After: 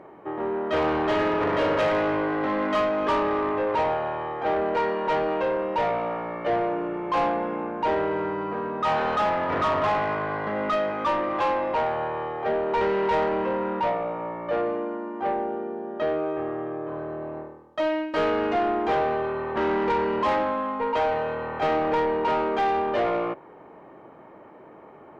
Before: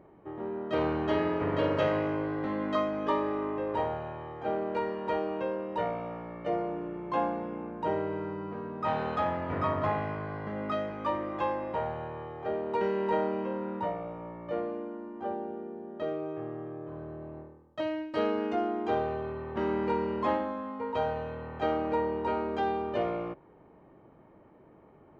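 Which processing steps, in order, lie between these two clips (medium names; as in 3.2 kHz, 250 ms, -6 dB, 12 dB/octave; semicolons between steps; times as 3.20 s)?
overdrive pedal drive 21 dB, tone 2.4 kHz, clips at -15 dBFS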